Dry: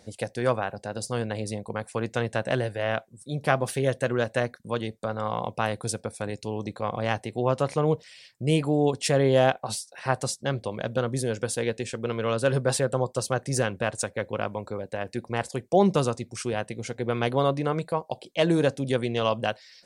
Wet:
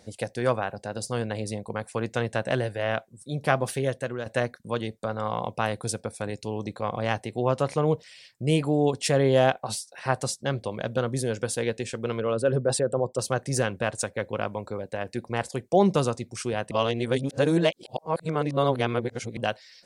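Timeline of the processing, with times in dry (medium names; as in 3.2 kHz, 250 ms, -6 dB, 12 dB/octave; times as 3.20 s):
3.68–4.26 s: fade out, to -9.5 dB
12.20–13.19 s: resonances exaggerated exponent 1.5
16.71–19.37 s: reverse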